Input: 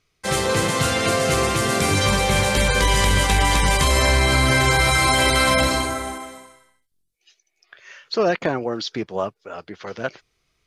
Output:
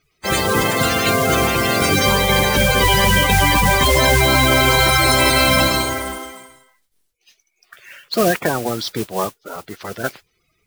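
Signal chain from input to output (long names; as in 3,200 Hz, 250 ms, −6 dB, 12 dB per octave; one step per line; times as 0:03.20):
spectral magnitudes quantised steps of 30 dB
noise that follows the level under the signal 11 dB
level +3.5 dB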